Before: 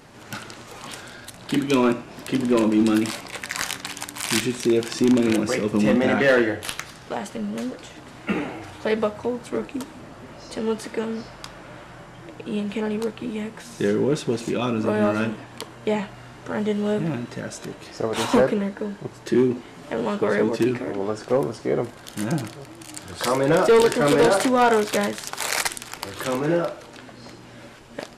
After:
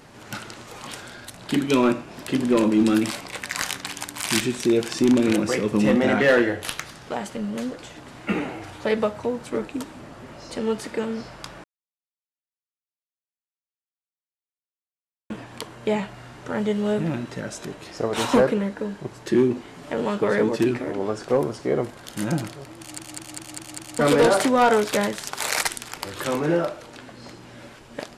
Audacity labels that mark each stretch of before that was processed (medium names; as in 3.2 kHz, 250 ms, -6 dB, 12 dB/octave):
11.640000	15.300000	mute
22.790000	22.790000	stutter in place 0.20 s, 6 plays